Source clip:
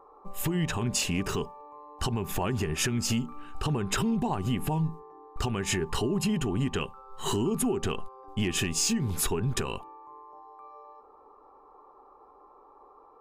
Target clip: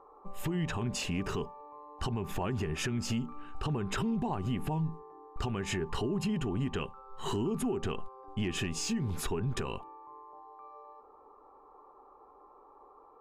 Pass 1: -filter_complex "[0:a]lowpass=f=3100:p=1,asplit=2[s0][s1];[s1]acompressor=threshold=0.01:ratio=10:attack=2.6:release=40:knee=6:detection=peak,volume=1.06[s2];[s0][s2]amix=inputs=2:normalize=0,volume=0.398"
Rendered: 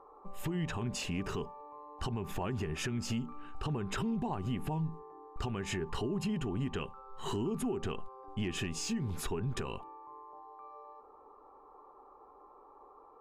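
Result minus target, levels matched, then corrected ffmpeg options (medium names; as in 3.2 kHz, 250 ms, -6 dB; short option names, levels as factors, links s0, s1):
compression: peak gain reduction +9.5 dB
-filter_complex "[0:a]lowpass=f=3100:p=1,asplit=2[s0][s1];[s1]acompressor=threshold=0.0335:ratio=10:attack=2.6:release=40:knee=6:detection=peak,volume=1.06[s2];[s0][s2]amix=inputs=2:normalize=0,volume=0.398"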